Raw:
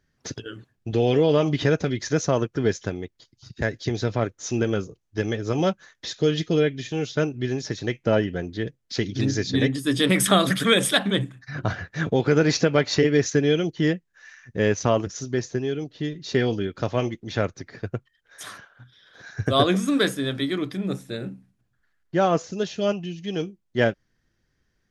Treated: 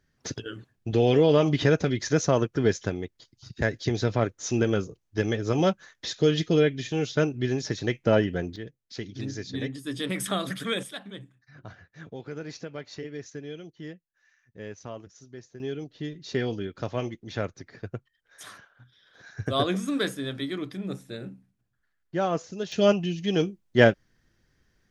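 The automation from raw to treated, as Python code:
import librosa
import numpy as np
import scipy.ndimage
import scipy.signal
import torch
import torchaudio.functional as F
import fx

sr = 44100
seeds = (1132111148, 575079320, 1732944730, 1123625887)

y = fx.gain(x, sr, db=fx.steps((0.0, -0.5), (8.56, -10.5), (10.83, -18.5), (15.6, -6.0), (22.72, 3.5)))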